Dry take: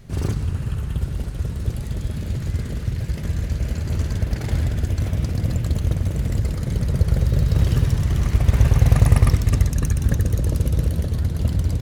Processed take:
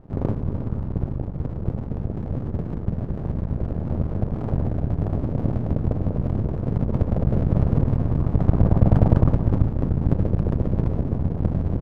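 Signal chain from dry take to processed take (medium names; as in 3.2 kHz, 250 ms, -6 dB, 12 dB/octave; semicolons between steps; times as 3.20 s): inverse Chebyshev low-pass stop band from 4.3 kHz, stop band 70 dB; half-wave rectifier; bass shelf 61 Hz -10.5 dB; echo from a far wall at 57 m, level -13 dB; trim +5.5 dB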